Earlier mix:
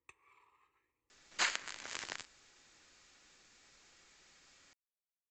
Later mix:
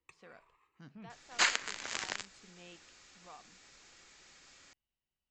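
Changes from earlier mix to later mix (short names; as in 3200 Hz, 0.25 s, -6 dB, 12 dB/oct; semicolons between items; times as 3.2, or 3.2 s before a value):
speech: unmuted; second sound +5.0 dB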